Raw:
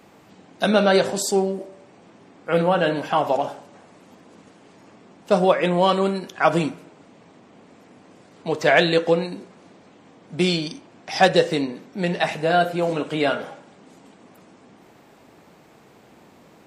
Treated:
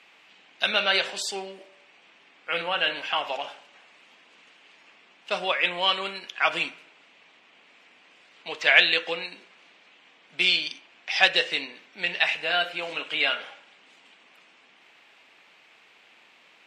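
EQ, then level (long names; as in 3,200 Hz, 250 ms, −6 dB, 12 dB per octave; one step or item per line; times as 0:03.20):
resonant band-pass 2,700 Hz, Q 2.3
+8.0 dB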